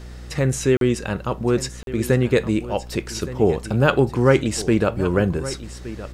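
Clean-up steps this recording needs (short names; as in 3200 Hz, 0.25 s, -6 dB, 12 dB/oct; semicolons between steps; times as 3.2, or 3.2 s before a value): de-hum 60.9 Hz, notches 9; interpolate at 0.77/1.83, 42 ms; inverse comb 1.169 s -15 dB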